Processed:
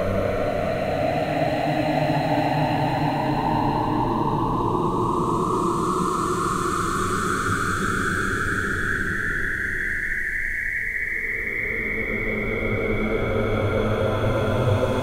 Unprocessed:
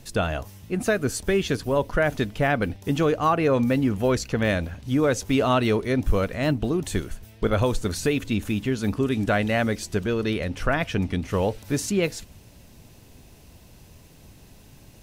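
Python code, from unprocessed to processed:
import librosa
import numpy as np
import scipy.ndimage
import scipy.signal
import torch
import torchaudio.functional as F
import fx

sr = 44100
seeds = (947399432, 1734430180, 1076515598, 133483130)

y = fx.spec_paint(x, sr, seeds[0], shape='rise', start_s=5.94, length_s=1.43, low_hz=400.0, high_hz=2300.0, level_db=-26.0)
y = fx.paulstretch(y, sr, seeds[1], factor=11.0, window_s=0.5, from_s=6.25)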